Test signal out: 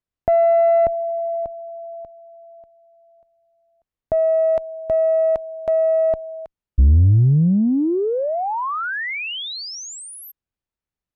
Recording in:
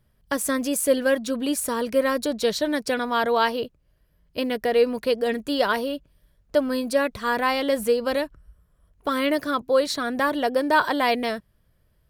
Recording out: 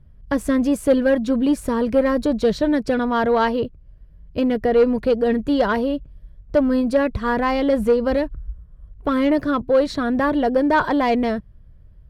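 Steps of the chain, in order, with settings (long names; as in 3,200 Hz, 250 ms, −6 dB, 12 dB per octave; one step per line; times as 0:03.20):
RIAA equalisation playback
harmonic generator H 5 −22 dB, 6 −27 dB, 7 −38 dB, 8 −32 dB, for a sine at −5.5 dBFS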